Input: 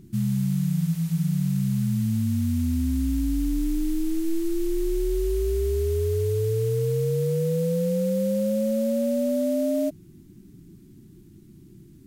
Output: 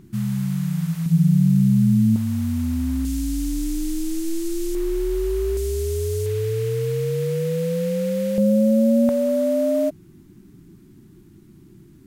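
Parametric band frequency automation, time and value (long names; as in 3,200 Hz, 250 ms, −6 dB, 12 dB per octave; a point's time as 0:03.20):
parametric band +9.5 dB 2.1 octaves
1,200 Hz
from 0:01.06 220 Hz
from 0:02.16 930 Hz
from 0:03.05 7,200 Hz
from 0:04.75 1,100 Hz
from 0:05.57 7,700 Hz
from 0:06.26 2,000 Hz
from 0:08.38 260 Hz
from 0:09.09 1,100 Hz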